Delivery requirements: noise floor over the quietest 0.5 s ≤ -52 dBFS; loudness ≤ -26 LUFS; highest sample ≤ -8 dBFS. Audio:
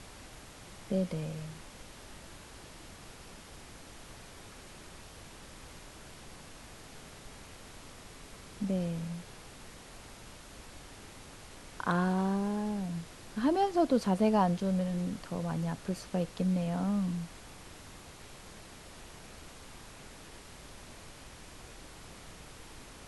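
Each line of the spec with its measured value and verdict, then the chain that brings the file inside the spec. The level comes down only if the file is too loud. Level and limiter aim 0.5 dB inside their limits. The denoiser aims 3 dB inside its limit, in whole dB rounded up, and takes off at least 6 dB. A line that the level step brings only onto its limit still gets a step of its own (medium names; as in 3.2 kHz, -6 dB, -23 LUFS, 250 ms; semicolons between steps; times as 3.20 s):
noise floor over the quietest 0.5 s -50 dBFS: fail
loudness -32.5 LUFS: pass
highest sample -15.5 dBFS: pass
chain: noise reduction 6 dB, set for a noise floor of -50 dBFS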